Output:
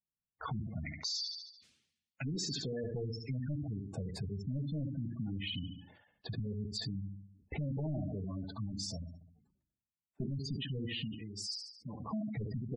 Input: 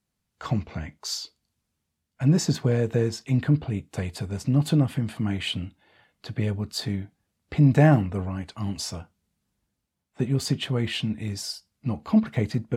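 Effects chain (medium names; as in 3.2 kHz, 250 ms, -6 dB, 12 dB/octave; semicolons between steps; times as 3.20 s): 0.86–2.84 s: frequency weighting D; feedback delay 71 ms, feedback 44%, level -8 dB; hard clipper -22 dBFS, distortion -6 dB; 8.66–10.42 s: hum notches 50/100/150/200/250/300/350/400/450/500 Hz; gate -47 dBFS, range -18 dB; compression 16:1, threshold -30 dBFS, peak gain reduction 7.5 dB; 11.05–12.00 s: bass shelf 220 Hz -10 dB; spectral gate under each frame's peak -15 dB strong; decay stretcher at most 72 dB/s; trim -4.5 dB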